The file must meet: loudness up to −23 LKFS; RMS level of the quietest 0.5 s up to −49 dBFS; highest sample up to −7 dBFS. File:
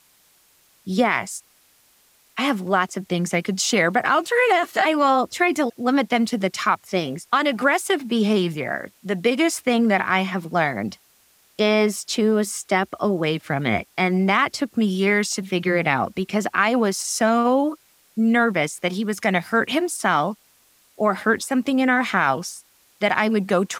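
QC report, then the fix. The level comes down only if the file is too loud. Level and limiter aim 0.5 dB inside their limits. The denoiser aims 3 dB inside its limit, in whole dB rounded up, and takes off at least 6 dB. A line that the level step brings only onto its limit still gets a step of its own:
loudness −21.0 LKFS: out of spec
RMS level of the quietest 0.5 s −58 dBFS: in spec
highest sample −5.0 dBFS: out of spec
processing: level −2.5 dB

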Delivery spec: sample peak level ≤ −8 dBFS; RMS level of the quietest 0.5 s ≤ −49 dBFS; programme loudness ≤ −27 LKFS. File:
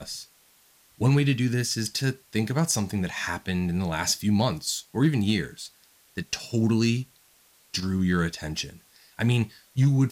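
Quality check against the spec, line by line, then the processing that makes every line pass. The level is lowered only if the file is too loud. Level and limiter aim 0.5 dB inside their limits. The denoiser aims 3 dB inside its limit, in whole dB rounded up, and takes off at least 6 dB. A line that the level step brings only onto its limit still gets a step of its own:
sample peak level −11.5 dBFS: in spec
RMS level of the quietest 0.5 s −60 dBFS: in spec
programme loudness −26.0 LKFS: out of spec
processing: level −1.5 dB

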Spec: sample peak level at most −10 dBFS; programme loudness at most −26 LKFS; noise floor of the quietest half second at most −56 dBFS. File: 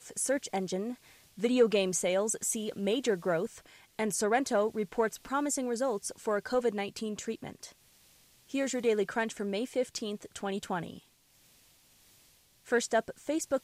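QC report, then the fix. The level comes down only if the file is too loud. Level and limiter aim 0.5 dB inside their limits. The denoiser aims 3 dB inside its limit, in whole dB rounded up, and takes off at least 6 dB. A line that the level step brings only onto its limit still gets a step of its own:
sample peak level −13.5 dBFS: in spec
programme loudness −31.5 LKFS: in spec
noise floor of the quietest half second −64 dBFS: in spec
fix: no processing needed

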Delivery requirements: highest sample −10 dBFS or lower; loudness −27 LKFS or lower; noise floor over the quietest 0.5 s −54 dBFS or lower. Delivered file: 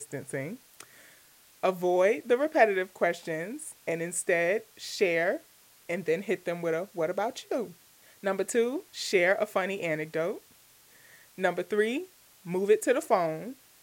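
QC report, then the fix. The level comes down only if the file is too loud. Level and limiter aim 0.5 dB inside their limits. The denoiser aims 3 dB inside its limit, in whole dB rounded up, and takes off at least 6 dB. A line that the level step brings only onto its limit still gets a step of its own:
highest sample −8.5 dBFS: out of spec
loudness −29.0 LKFS: in spec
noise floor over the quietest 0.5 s −59 dBFS: in spec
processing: brickwall limiter −10.5 dBFS

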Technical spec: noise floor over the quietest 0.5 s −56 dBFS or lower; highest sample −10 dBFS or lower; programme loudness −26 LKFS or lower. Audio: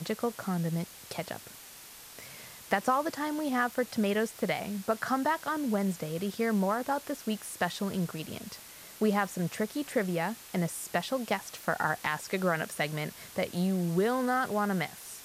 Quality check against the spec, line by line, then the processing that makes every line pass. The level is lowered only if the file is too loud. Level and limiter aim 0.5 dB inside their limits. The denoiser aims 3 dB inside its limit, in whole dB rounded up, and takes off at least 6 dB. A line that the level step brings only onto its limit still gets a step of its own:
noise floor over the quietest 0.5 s −49 dBFS: out of spec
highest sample −14.5 dBFS: in spec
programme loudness −31.5 LKFS: in spec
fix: broadband denoise 10 dB, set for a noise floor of −49 dBFS

